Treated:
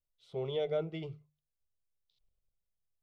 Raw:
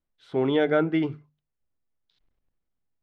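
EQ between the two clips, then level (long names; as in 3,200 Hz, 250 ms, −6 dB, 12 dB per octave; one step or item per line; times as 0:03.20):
parametric band 890 Hz −11.5 dB 0.77 octaves
phaser with its sweep stopped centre 680 Hz, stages 4
−5.0 dB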